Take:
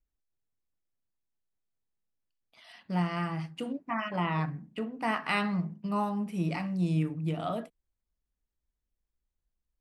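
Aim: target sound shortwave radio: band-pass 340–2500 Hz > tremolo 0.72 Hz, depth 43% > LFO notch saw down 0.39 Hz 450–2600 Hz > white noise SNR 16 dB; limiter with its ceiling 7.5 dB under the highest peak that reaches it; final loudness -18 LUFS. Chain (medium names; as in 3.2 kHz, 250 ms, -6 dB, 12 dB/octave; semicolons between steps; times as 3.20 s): peak limiter -22.5 dBFS; band-pass 340–2500 Hz; tremolo 0.72 Hz, depth 43%; LFO notch saw down 0.39 Hz 450–2600 Hz; white noise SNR 16 dB; trim +25.5 dB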